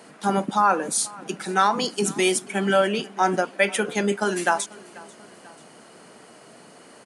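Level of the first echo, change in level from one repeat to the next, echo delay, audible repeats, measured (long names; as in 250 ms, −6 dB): −22.5 dB, −5.0 dB, 489 ms, 2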